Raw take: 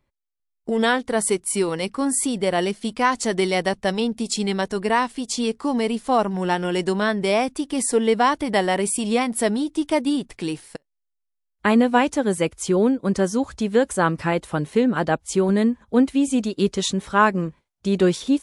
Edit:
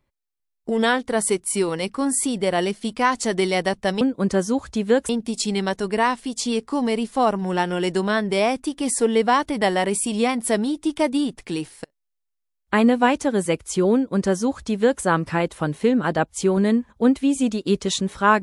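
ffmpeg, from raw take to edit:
-filter_complex "[0:a]asplit=3[s0][s1][s2];[s0]atrim=end=4.012[s3];[s1]atrim=start=12.858:end=13.942[s4];[s2]atrim=start=4.008[s5];[s3][s4]acrossfade=d=0.004:c1=hsin:c2=hsin[s6];[s6][s5]acrossfade=d=0.004:c1=hsin:c2=hsin"

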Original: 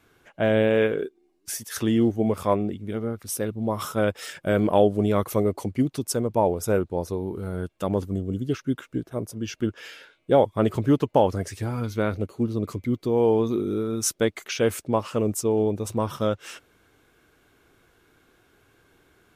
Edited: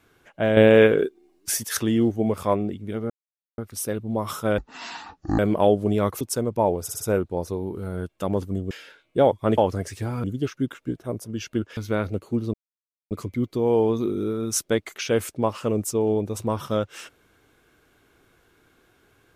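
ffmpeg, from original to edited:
-filter_complex "[0:a]asplit=15[s0][s1][s2][s3][s4][s5][s6][s7][s8][s9][s10][s11][s12][s13][s14];[s0]atrim=end=0.572[s15];[s1]atrim=start=0.568:end=1.772,asetpts=PTS-STARTPTS,volume=2.11[s16];[s2]atrim=start=1.768:end=3.1,asetpts=PTS-STARTPTS,afade=t=out:st=1.328:d=0.004:c=hsin,apad=pad_dur=0.48[s17];[s3]atrim=start=3.1:end=4.104,asetpts=PTS-STARTPTS,afade=t=in:d=0.004:c=hsin[s18];[s4]atrim=start=4.1:end=4.52,asetpts=PTS-STARTPTS,asetrate=22932,aresample=44100,atrim=end_sample=35619,asetpts=PTS-STARTPTS[s19];[s5]atrim=start=4.516:end=5.342[s20];[s6]atrim=start=5.988:end=6.672[s21];[s7]atrim=start=6.608:end=6.672[s22];[s8]atrim=start=6.608:end=6.672[s23];[s9]atrim=start=6.608:end=8.312[s24];[s10]atrim=start=9.838:end=10.712[s25];[s11]atrim=start=11.178:end=11.842[s26];[s12]atrim=start=8.308:end=9.842[s27];[s13]atrim=start=11.838:end=12.61,asetpts=PTS-STARTPTS,afade=t=out:st=0.768:d=0.004:c=hsin,apad=pad_dur=0.57[s28];[s14]atrim=start=12.61,asetpts=PTS-STARTPTS,afade=t=in:d=0.004:c=hsin[s29];[s15][s16]acrossfade=d=0.004:c1=hsin:c2=hsin[s30];[s17][s18]concat=n=2:v=0:a=1[s31];[s30][s31]acrossfade=d=0.004:c1=hsin:c2=hsin[s32];[s32][s19]acrossfade=d=0.004:c1=hsin:c2=hsin[s33];[s33][s20]acrossfade=d=0.004:c1=hsin:c2=hsin[s34];[s34][s21]acrossfade=d=0.004:c1=hsin:c2=hsin[s35];[s35][s22]acrossfade=d=0.004:c1=hsin:c2=hsin[s36];[s36][s23]acrossfade=d=0.004:c1=hsin:c2=hsin[s37];[s37][s24]acrossfade=d=0.004:c1=hsin:c2=hsin[s38];[s38][s25]acrossfade=d=0.004:c1=hsin:c2=hsin[s39];[s39][s26]acrossfade=d=0.004:c1=hsin:c2=hsin[s40];[s40][s27]acrossfade=d=0.004:c1=hsin:c2=hsin[s41];[s28][s29]concat=n=2:v=0:a=1[s42];[s41][s42]acrossfade=d=0.004:c1=hsin:c2=hsin"

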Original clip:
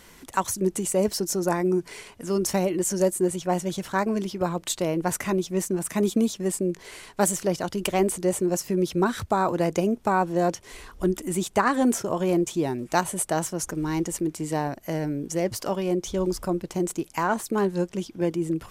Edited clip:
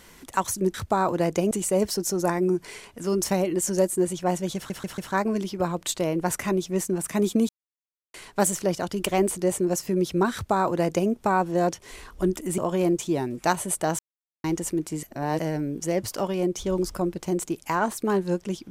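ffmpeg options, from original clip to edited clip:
-filter_complex "[0:a]asplit=13[s0][s1][s2][s3][s4][s5][s6][s7][s8][s9][s10][s11][s12];[s0]atrim=end=0.742[s13];[s1]atrim=start=9.138:end=9.912[s14];[s2]atrim=start=0.738:end=3.932[s15];[s3]atrim=start=3.788:end=3.932[s16];[s4]atrim=start=3.788:end=3.932[s17];[s5]atrim=start=3.788:end=6.3,asetpts=PTS-STARTPTS,afade=t=out:st=2.508:d=0.004:c=hsin[s18];[s6]atrim=start=6.3:end=6.95,asetpts=PTS-STARTPTS,volume=0[s19];[s7]atrim=start=6.95:end=11.392,asetpts=PTS-STARTPTS,afade=t=in:d=0.004:c=hsin[s20];[s8]atrim=start=12.058:end=13.47,asetpts=PTS-STARTPTS,afade=t=out:st=1.408:d=0.004:c=hsin[s21];[s9]atrim=start=13.47:end=13.92,asetpts=PTS-STARTPTS,volume=0[s22];[s10]atrim=start=13.92:end=14.512,asetpts=PTS-STARTPTS,afade=t=in:d=0.004:c=hsin[s23];[s11]atrim=start=14.508:end=14.872,asetpts=PTS-STARTPTS,areverse[s24];[s12]atrim=start=14.868[s25];[s13][s14]acrossfade=d=0.004:c1=hsin:c2=hsin[s26];[s26][s15]acrossfade=d=0.004:c1=hsin:c2=hsin[s27];[s27][s16]acrossfade=d=0.004:c1=hsin:c2=hsin[s28];[s28][s17]acrossfade=d=0.004:c1=hsin:c2=hsin[s29];[s18][s19][s20]concat=n=3:v=0:a=1[s30];[s29][s30]acrossfade=d=0.004:c1=hsin:c2=hsin[s31];[s21][s22][s23]concat=n=3:v=0:a=1[s32];[s31][s32]acrossfade=d=0.004:c1=hsin:c2=hsin[s33];[s33][s24]acrossfade=d=0.004:c1=hsin:c2=hsin[s34];[s34][s25]acrossfade=d=0.004:c1=hsin:c2=hsin"

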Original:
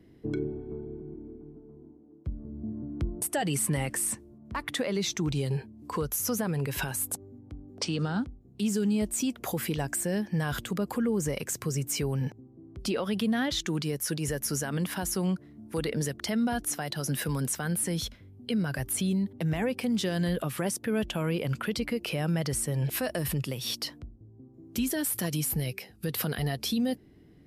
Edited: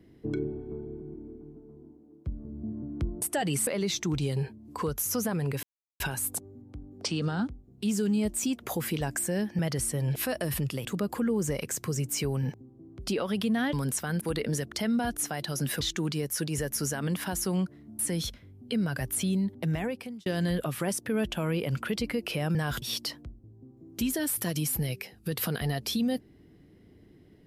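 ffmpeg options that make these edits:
-filter_complex "[0:a]asplit=12[s0][s1][s2][s3][s4][s5][s6][s7][s8][s9][s10][s11];[s0]atrim=end=3.672[s12];[s1]atrim=start=4.808:end=6.77,asetpts=PTS-STARTPTS,afade=t=out:st=1.958:d=0.004:c=hsin,apad=pad_dur=0.37[s13];[s2]atrim=start=6.77:end=10.362,asetpts=PTS-STARTPTS,afade=t=in:d=0.004:c=hsin[s14];[s3]atrim=start=22.328:end=23.592[s15];[s4]atrim=start=10.628:end=13.512[s16];[s5]atrim=start=17.288:end=17.772[s17];[s6]atrim=start=15.688:end=17.292[s18];[s7]atrim=start=13.508:end=15.692[s19];[s8]atrim=start=17.768:end=20.04,asetpts=PTS-STARTPTS,afade=t=out:st=1.712:d=0.56[s20];[s9]atrim=start=20.04:end=22.332,asetpts=PTS-STARTPTS,afade=t=in:d=0.004:c=hsin[s21];[s10]atrim=start=10.358:end=10.632[s22];[s11]atrim=start=23.588[s23];[s13][s14]concat=n=2:v=0:a=1[s24];[s12][s24]acrossfade=d=0.004:c1=hsin:c2=hsin[s25];[s25][s15]acrossfade=d=0.004:c1=hsin:c2=hsin[s26];[s26][s16]acrossfade=d=0.004:c1=hsin:c2=hsin[s27];[s27][s17]acrossfade=d=0.004:c1=hsin:c2=hsin[s28];[s28][s18]acrossfade=d=0.004:c1=hsin:c2=hsin[s29];[s29][s19]acrossfade=d=0.004:c1=hsin:c2=hsin[s30];[s20][s21]concat=n=2:v=0:a=1[s31];[s30][s31]acrossfade=d=0.004:c1=hsin:c2=hsin[s32];[s32][s22]acrossfade=d=0.004:c1=hsin:c2=hsin[s33];[s33][s23]acrossfade=d=0.004:c1=hsin:c2=hsin"

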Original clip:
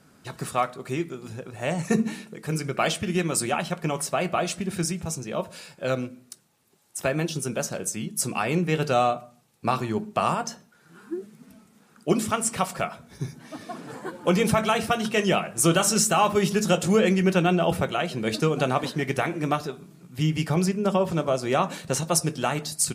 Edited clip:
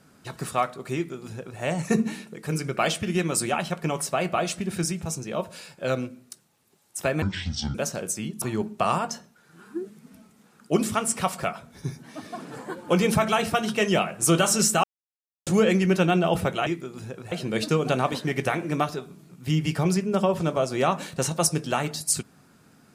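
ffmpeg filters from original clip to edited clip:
-filter_complex "[0:a]asplit=8[s0][s1][s2][s3][s4][s5][s6][s7];[s0]atrim=end=7.224[s8];[s1]atrim=start=7.22:end=7.52,asetpts=PTS-STARTPTS,asetrate=25137,aresample=44100[s9];[s2]atrim=start=7.516:end=8.192[s10];[s3]atrim=start=9.778:end=16.2,asetpts=PTS-STARTPTS,afade=t=out:st=6.418:d=0.004:c=hsin[s11];[s4]atrim=start=16.2:end=16.83,asetpts=PTS-STARTPTS,volume=0[s12];[s5]atrim=start=16.83:end=18.032,asetpts=PTS-STARTPTS,afade=t=in:d=0.004:c=hsin[s13];[s6]atrim=start=0.948:end=1.602[s14];[s7]atrim=start=18.028[s15];[s8][s9]acrossfade=d=0.004:c1=hsin:c2=hsin[s16];[s16][s10]acrossfade=d=0.004:c1=hsin:c2=hsin[s17];[s11][s12][s13]concat=n=3:v=0:a=1[s18];[s17][s18]acrossfade=d=0.004:c1=hsin:c2=hsin[s19];[s19][s14]acrossfade=d=0.004:c1=hsin:c2=hsin[s20];[s20][s15]acrossfade=d=0.004:c1=hsin:c2=hsin"

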